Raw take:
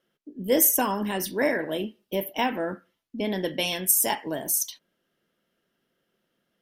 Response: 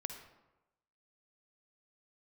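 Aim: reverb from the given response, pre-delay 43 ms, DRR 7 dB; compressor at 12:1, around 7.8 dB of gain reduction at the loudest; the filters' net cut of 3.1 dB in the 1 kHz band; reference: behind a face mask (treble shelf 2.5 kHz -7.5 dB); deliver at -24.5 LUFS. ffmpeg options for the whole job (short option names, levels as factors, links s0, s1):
-filter_complex "[0:a]equalizer=f=1000:t=o:g=-3,acompressor=threshold=0.0708:ratio=12,asplit=2[s0][s1];[1:a]atrim=start_sample=2205,adelay=43[s2];[s1][s2]afir=irnorm=-1:irlink=0,volume=0.531[s3];[s0][s3]amix=inputs=2:normalize=0,highshelf=f=2500:g=-7.5,volume=2.11"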